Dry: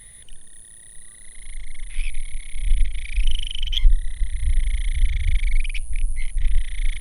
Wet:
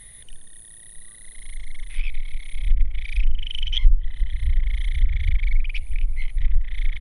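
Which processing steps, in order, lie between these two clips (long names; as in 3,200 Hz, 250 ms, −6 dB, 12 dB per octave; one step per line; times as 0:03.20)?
repeating echo 266 ms, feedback 57%, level −21.5 dB
treble cut that deepens with the level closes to 340 Hz, closed at −6.5 dBFS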